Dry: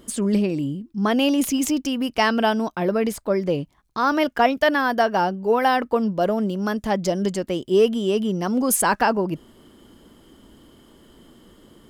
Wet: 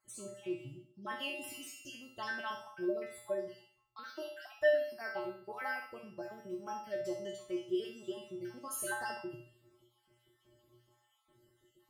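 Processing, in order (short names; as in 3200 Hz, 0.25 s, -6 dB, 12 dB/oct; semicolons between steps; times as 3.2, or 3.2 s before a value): random spectral dropouts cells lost 47%; resonator 120 Hz, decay 0.49 s, harmonics odd, mix 100%; on a send: flutter echo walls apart 11.2 m, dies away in 0.44 s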